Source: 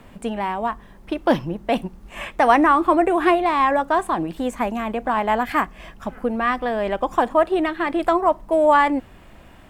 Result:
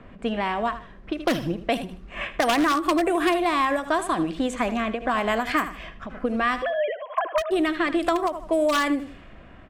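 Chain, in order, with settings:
0:06.62–0:07.51: three sine waves on the formant tracks
dynamic equaliser 300 Hz, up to +4 dB, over −32 dBFS, Q 3.4
low-pass that shuts in the quiet parts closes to 1,600 Hz, open at −14 dBFS
repeating echo 77 ms, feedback 26%, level −14 dB
wave folding −8.5 dBFS
high-shelf EQ 3,000 Hz +11.5 dB
notch filter 880 Hz, Q 5.3
downward compressor 3 to 1, threshold −20 dBFS, peak gain reduction 7.5 dB
every ending faded ahead of time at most 180 dB per second

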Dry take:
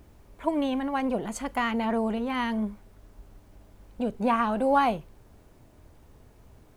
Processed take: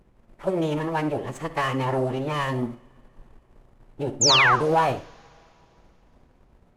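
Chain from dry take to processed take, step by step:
running median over 9 samples
mains-hum notches 60/120/180/240/300/360/420/480/540 Hz
dynamic equaliser 120 Hz, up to −6 dB, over −47 dBFS, Q 0.97
phase-vocoder pitch shift with formants kept −9.5 semitones
leveller curve on the samples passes 1
sound drawn into the spectrogram fall, 0:04.21–0:04.56, 940–7,400 Hz −18 dBFS
on a send: convolution reverb, pre-delay 55 ms, DRR 12 dB

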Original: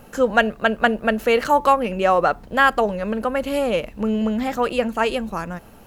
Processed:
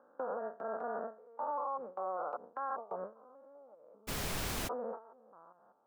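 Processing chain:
spectrum averaged block by block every 200 ms
downward compressor 12 to 1, threshold −31 dBFS, peak gain reduction 16.5 dB
Butterworth low-pass 1,300 Hz 48 dB per octave
noise gate with hold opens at −25 dBFS
high-pass filter 610 Hz 12 dB per octave
brickwall limiter −32.5 dBFS, peak gain reduction 8 dB
0:04.07–0:04.67: background noise pink −40 dBFS
level +3.5 dB

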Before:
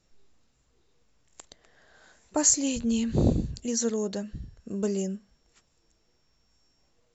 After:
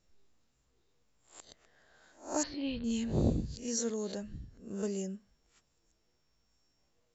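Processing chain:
peak hold with a rise ahead of every peak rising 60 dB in 0.36 s
0:02.43–0:02.84: Butterworth low-pass 4,400 Hz 72 dB per octave
level −7.5 dB

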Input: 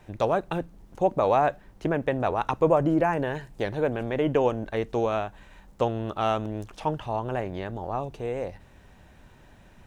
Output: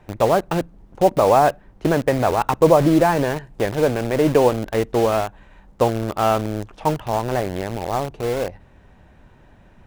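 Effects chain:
high-shelf EQ 3,200 Hz −11 dB
in parallel at −4 dB: bit reduction 5 bits
on the sum: level +3.5 dB

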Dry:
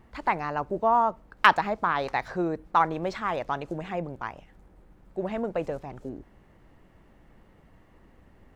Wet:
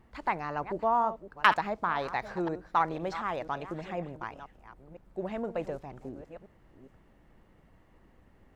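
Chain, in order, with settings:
delay that plays each chunk backwards 497 ms, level −13 dB
level −4.5 dB

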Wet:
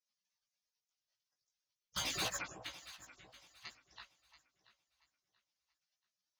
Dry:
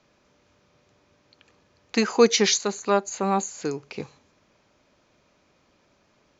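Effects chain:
harmonic-percussive split with one part muted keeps percussive
low-pass filter 4,000 Hz 24 dB per octave
gate on every frequency bin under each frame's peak −30 dB weak
0:01.96–0:02.37: leveller curve on the samples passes 5
chorus effect 0.46 Hz, delay 15.5 ms, depth 4.2 ms
delay that swaps between a low-pass and a high-pass 341 ms, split 1,000 Hz, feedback 55%, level −10.5 dB
level +7.5 dB

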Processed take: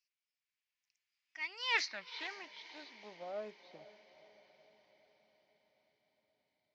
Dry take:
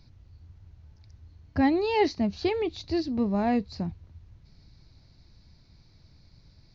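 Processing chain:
source passing by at 0:01.86, 46 m/s, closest 6.3 metres
high-pass filter sweep 2,300 Hz → 240 Hz, 0:01.36–0:04.59
feedback delay with all-pass diffusion 490 ms, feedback 58%, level −15.5 dB
highs frequency-modulated by the lows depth 0.15 ms

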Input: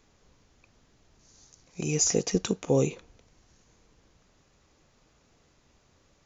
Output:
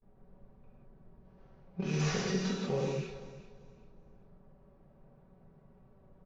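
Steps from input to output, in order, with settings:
variable-slope delta modulation 32 kbit/s
noise gate with hold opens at −54 dBFS
low-pass that shuts in the quiet parts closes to 560 Hz, open at −24.5 dBFS
parametric band 320 Hz −7 dB 0.44 octaves
comb filter 5.3 ms, depth 41%
downward compressor 8 to 1, threshold −35 dBFS, peak gain reduction 15 dB
repeating echo 389 ms, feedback 27%, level −16 dB
reverb whose tail is shaped and stops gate 220 ms flat, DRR −5.5 dB

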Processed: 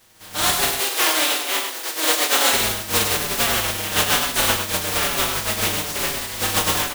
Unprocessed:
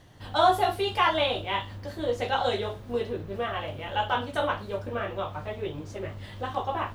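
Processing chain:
compressing power law on the bin magnitudes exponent 0.21
0:00.69–0:02.53: linear-phase brick-wall high-pass 250 Hz
in parallel at −10 dB: wave folding −23.5 dBFS
on the sum: automatic gain control gain up to 12 dB
single-tap delay 101 ms −6.5 dB
barber-pole flanger 5.7 ms −1.1 Hz

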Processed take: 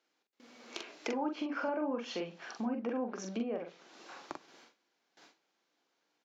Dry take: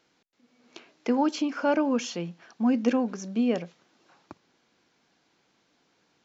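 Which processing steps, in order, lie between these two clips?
treble cut that deepens with the level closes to 1,500 Hz, closed at −22 dBFS
noise gate with hold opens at −57 dBFS
high-pass filter 310 Hz 12 dB per octave
in parallel at +1 dB: brickwall limiter −25 dBFS, peak gain reduction 10 dB
on the sum: downward compressor 2.5 to 1, threshold −45 dBFS, peak gain reduction 17.5 dB
double-tracking delay 43 ms −4.5 dB
on a send at −16 dB: convolution reverb RT60 0.40 s, pre-delay 3 ms
on the sum: level +3 dB

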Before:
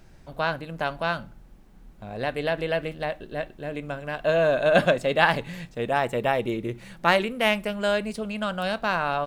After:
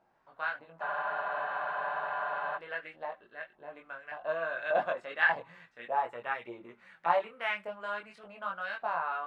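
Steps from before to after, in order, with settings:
auto-filter band-pass saw up 1.7 Hz 800–1,900 Hz
multi-voice chorus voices 6, 0.29 Hz, delay 21 ms, depth 4.8 ms
frozen spectrum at 0:00.84, 1.72 s

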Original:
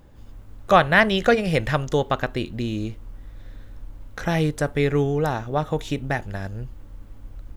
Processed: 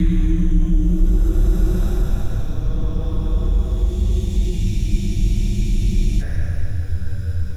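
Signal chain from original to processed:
extreme stretch with random phases 4.9×, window 0.50 s, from 0:04.92
frequency shifter −110 Hz
drawn EQ curve 100 Hz 0 dB, 730 Hz −28 dB, 8,100 Hz −9 dB
in parallel at +1 dB: brickwall limiter −23.5 dBFS, peak gain reduction 8 dB
on the sum: frozen spectrum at 0:04.66, 1.56 s
level +6.5 dB

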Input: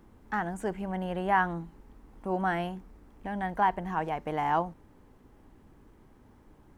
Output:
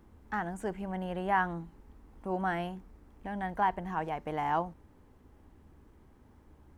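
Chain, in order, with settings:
parametric band 73 Hz +11.5 dB 0.3 octaves
level −3 dB

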